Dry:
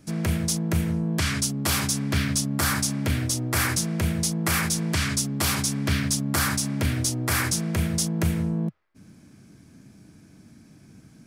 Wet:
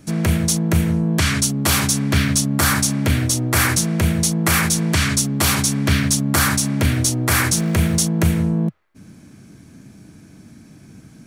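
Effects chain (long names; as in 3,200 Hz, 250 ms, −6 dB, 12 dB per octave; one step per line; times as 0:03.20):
0:07.57–0:07.99: converter with a step at zero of −39.5 dBFS
notch filter 5,000 Hz, Q 14
level +7 dB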